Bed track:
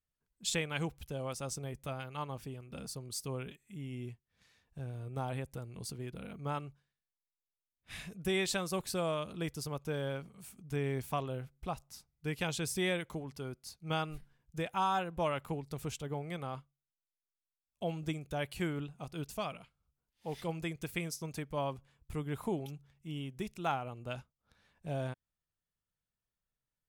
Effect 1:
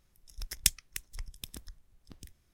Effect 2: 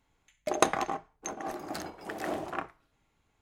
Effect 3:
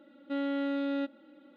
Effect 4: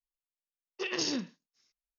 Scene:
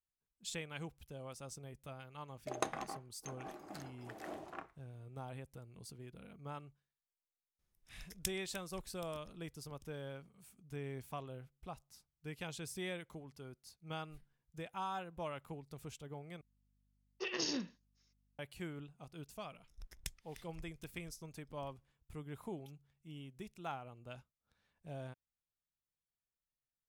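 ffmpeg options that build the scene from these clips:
-filter_complex "[1:a]asplit=2[s0][s1];[0:a]volume=0.335[s2];[4:a]aeval=exprs='val(0)+0.000282*(sin(2*PI*50*n/s)+sin(2*PI*2*50*n/s)/2+sin(2*PI*3*50*n/s)/3+sin(2*PI*4*50*n/s)/4+sin(2*PI*5*50*n/s)/5)':c=same[s3];[s1]highshelf=f=2700:g=-11.5[s4];[s2]asplit=2[s5][s6];[s5]atrim=end=16.414[s7];[s3]atrim=end=1.98,asetpts=PTS-STARTPTS,volume=0.531[s8];[s6]atrim=start=18.386[s9];[2:a]atrim=end=3.41,asetpts=PTS-STARTPTS,volume=0.237,afade=t=in:d=0.004:c=hsin,afade=t=out:st=3.406:d=0.004:c=hsin,adelay=2000[s10];[s0]atrim=end=2.53,asetpts=PTS-STARTPTS,volume=0.188,afade=t=in:d=0.004:c=hsin,afade=t=out:st=2.526:d=0.004:c=hsin,adelay=7590[s11];[s4]atrim=end=2.53,asetpts=PTS-STARTPTS,volume=0.282,afade=t=in:d=0.004:c=hsin,afade=t=out:st=2.526:d=0.004:c=hsin,adelay=855540S[s12];[s7][s8]acrossfade=d=0.004:c1=hsin:c2=hsin[s13];[s13][s9]acrossfade=d=0.004:c1=hsin:c2=hsin[s14];[s14][s10][s11][s12]amix=inputs=4:normalize=0"

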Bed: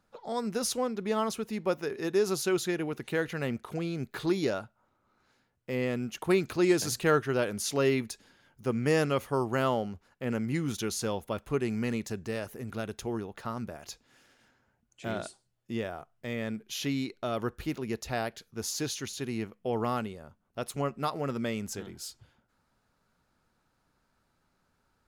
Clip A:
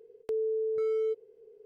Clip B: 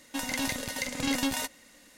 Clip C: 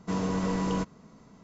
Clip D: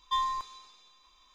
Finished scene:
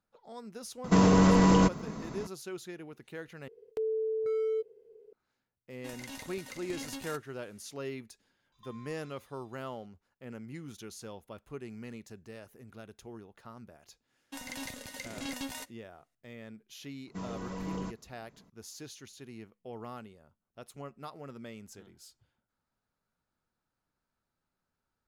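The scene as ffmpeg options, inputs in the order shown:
-filter_complex "[3:a]asplit=2[s0][s1];[2:a]asplit=2[s2][s3];[0:a]volume=0.224[s4];[s0]alimiter=level_in=18.8:limit=0.891:release=50:level=0:latency=1[s5];[4:a]acompressor=threshold=0.01:ratio=6:attack=3.2:release=140:knee=1:detection=peak[s6];[s3]agate=range=0.0224:threshold=0.00562:ratio=3:release=100:detection=peak[s7];[s1]aphaser=in_gain=1:out_gain=1:delay=2.7:decay=0.3:speed=1.5:type=sinusoidal[s8];[s4]asplit=2[s9][s10];[s9]atrim=end=3.484[s11];[1:a]atrim=end=1.65,asetpts=PTS-STARTPTS,volume=0.841[s12];[s10]atrim=start=5.126[s13];[s5]atrim=end=1.43,asetpts=PTS-STARTPTS,volume=0.237,afade=t=in:d=0.004:c=hsin,afade=t=out:st=1.426:d=0.004:c=hsin,adelay=840[s14];[s2]atrim=end=1.97,asetpts=PTS-STARTPTS,volume=0.2,afade=t=in:d=0.004:c=hsin,afade=t=out:st=1.966:d=0.004:c=hsin,adelay=5700[s15];[s6]atrim=end=1.34,asetpts=PTS-STARTPTS,volume=0.224,afade=t=in:d=0.004:c=hsin,afade=t=out:st=1.336:d=0.004:c=hsin,adelay=8520[s16];[s7]atrim=end=1.97,asetpts=PTS-STARTPTS,volume=0.316,afade=t=in:d=0.004:c=hsin,afade=t=out:st=1.966:d=0.004:c=hsin,adelay=14180[s17];[s8]atrim=end=1.43,asetpts=PTS-STARTPTS,volume=0.299,afade=t=in:d=0.004:c=hsin,afade=t=out:st=1.426:d=0.004:c=hsin,adelay=17070[s18];[s11][s12]acrossfade=d=0.004:c1=hsin:c2=hsin[s19];[s19][s13]acrossfade=d=0.004:c1=hsin:c2=hsin[s20];[s20][s14][s15][s16][s17][s18]amix=inputs=6:normalize=0"

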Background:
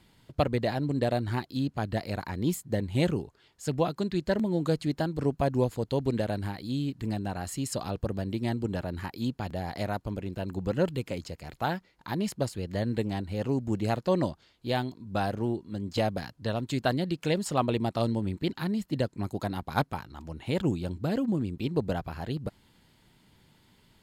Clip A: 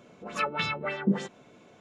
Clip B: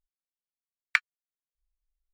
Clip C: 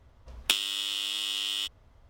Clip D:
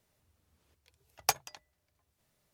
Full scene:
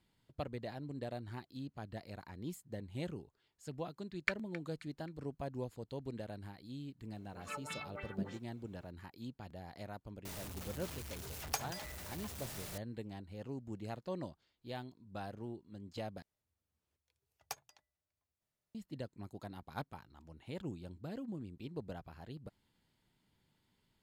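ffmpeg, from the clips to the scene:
-filter_complex "[4:a]asplit=2[s0][s1];[0:a]volume=0.168[s2];[2:a]aecho=1:1:266|532|798:0.158|0.0618|0.0241[s3];[1:a]acrusher=bits=10:mix=0:aa=0.000001[s4];[s0]aeval=exprs='val(0)+0.5*0.0299*sgn(val(0))':c=same[s5];[s2]asplit=2[s6][s7];[s6]atrim=end=16.224[s8];[s1]atrim=end=2.53,asetpts=PTS-STARTPTS,volume=0.158[s9];[s7]atrim=start=18.746[s10];[s3]atrim=end=2.13,asetpts=PTS-STARTPTS,volume=0.316,afade=t=in:d=0.004:c=hsin,afade=t=out:st=2.126:d=0.004:c=hsin,adelay=146853S[s11];[s4]atrim=end=1.8,asetpts=PTS-STARTPTS,volume=0.168,afade=t=in:d=0.004:c=hsin,afade=t=out:st=1.796:d=0.004:c=hsin,adelay=7110[s12];[s5]atrim=end=2.53,asetpts=PTS-STARTPTS,volume=0.316,afade=t=in:d=0.004:c=hsin,afade=t=out:st=2.526:d=0.004:c=hsin,adelay=10250[s13];[s8][s9]acrossfade=d=0.004:c1=hsin:c2=hsin[s14];[s14][s10]acrossfade=d=0.004:c1=hsin:c2=hsin[s15];[s15][s11][s12][s13]amix=inputs=4:normalize=0"

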